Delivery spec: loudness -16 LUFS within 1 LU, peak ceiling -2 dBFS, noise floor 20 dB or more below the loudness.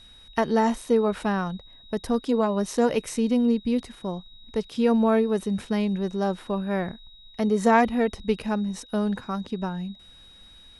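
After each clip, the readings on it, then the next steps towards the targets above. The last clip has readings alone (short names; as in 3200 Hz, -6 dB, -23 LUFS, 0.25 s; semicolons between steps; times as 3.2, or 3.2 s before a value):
steady tone 3800 Hz; tone level -49 dBFS; loudness -25.5 LUFS; peak -6.5 dBFS; loudness target -16.0 LUFS
-> notch 3800 Hz, Q 30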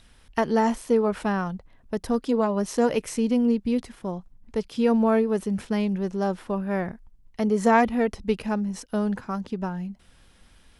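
steady tone none; loudness -25.5 LUFS; peak -6.5 dBFS; loudness target -16.0 LUFS
-> gain +9.5 dB; limiter -2 dBFS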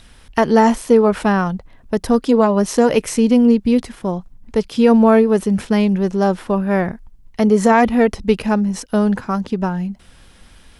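loudness -16.5 LUFS; peak -2.0 dBFS; noise floor -46 dBFS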